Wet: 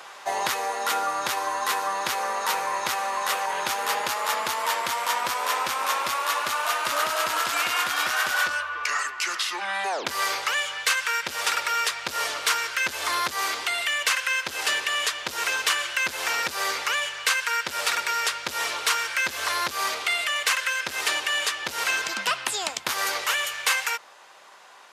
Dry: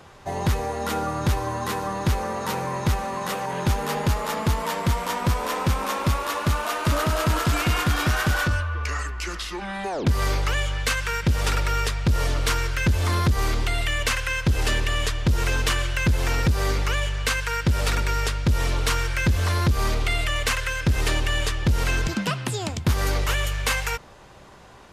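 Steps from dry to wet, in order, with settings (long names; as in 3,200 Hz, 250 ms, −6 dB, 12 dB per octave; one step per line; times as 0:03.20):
high-pass filter 840 Hz 12 dB per octave
in parallel at +1 dB: speech leveller 0.5 s
on the sum: level −3 dB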